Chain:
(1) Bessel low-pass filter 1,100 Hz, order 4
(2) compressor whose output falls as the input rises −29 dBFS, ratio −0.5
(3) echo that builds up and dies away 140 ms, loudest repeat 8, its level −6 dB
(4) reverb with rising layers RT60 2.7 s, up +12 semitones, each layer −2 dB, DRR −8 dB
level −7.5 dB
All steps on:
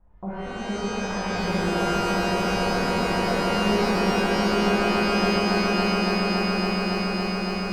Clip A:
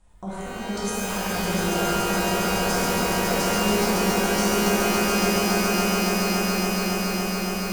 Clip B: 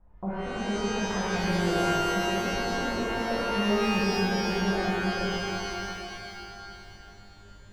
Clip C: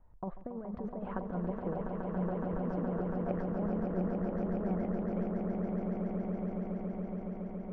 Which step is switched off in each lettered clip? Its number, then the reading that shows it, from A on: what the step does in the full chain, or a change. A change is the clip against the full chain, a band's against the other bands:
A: 1, 8 kHz band +11.5 dB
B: 3, change in momentary loudness spread +7 LU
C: 4, 2 kHz band −16.0 dB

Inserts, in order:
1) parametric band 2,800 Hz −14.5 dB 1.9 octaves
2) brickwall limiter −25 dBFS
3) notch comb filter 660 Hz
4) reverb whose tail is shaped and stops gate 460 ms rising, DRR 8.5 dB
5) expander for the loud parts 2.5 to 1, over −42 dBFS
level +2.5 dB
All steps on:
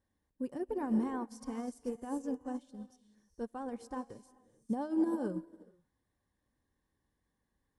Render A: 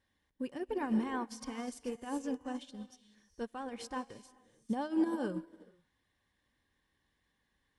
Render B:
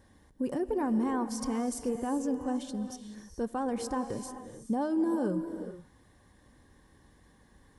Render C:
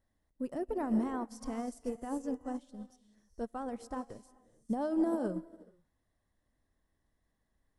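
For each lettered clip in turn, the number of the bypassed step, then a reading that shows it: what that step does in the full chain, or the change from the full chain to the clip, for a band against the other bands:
1, 2 kHz band +7.5 dB
5, 8 kHz band +8.0 dB
3, 250 Hz band −1.5 dB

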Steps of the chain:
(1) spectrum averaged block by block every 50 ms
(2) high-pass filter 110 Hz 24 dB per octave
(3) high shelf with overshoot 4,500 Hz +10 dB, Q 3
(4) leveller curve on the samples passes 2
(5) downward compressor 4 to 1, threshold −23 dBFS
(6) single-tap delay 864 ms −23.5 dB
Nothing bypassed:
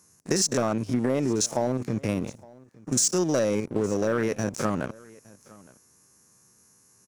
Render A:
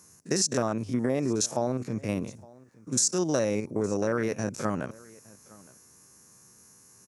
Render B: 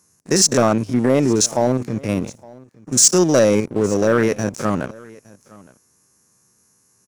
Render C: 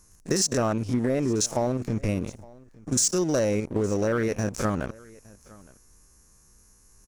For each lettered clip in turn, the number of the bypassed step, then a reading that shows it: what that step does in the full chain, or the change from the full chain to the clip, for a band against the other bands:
4, change in crest factor +3.5 dB
5, average gain reduction 7.5 dB
2, 125 Hz band +2.5 dB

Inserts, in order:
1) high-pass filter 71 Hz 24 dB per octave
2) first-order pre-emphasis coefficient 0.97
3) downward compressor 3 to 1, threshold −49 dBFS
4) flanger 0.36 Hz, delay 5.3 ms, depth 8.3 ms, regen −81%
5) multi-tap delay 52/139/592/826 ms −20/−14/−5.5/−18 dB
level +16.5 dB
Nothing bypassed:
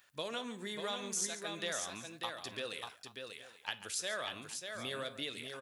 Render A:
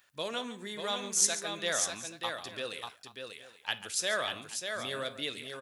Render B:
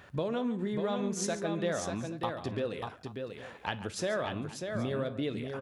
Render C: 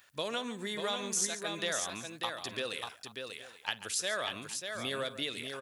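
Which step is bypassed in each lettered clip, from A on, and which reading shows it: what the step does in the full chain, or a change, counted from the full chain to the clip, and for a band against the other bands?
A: 3, change in crest factor +4.0 dB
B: 2, 125 Hz band +13.0 dB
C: 4, change in integrated loudness +4.5 LU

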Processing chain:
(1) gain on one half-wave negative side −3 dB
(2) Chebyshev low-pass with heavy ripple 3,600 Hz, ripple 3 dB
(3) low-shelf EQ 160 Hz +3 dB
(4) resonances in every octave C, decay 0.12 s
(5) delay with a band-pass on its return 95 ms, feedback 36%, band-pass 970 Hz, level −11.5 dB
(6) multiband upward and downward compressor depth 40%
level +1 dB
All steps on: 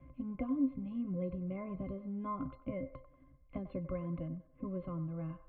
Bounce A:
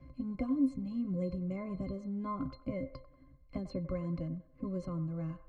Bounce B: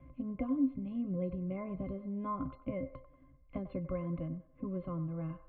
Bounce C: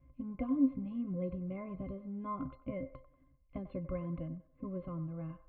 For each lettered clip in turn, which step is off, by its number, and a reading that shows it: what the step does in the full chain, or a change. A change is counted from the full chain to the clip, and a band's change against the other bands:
2, 1 kHz band −2.0 dB
1, distortion level −15 dB
6, change in crest factor +3.0 dB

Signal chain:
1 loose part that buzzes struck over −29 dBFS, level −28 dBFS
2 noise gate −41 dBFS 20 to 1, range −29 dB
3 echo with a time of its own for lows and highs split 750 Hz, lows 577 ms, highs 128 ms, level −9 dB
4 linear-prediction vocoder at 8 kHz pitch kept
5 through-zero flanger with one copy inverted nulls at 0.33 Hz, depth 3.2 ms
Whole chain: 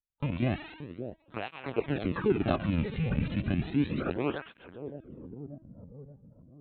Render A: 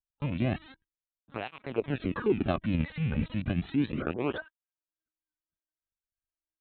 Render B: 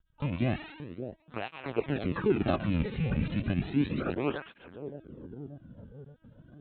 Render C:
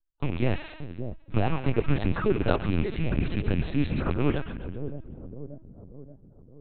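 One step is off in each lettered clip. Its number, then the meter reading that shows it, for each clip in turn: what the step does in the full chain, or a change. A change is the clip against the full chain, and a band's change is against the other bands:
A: 3, change in momentary loudness spread −8 LU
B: 2, change in crest factor −2.5 dB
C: 5, 125 Hz band +1.5 dB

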